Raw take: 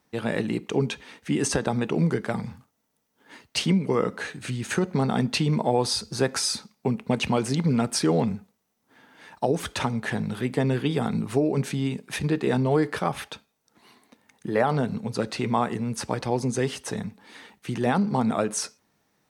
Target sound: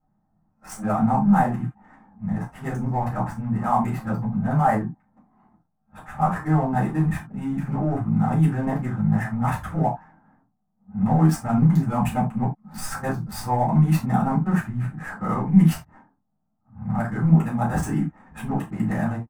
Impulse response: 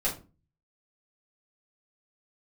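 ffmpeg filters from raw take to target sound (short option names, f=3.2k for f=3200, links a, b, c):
-filter_complex "[0:a]areverse,adynamicsmooth=sensitivity=5.5:basefreq=750,firequalizer=gain_entry='entry(150,0);entry(460,-22);entry(730,-2);entry(1500,-5);entry(2500,-16);entry(4000,-22);entry(7900,-4)':delay=0.05:min_phase=1[a];[1:a]atrim=start_sample=2205,atrim=end_sample=4410[b];[a][b]afir=irnorm=-1:irlink=0"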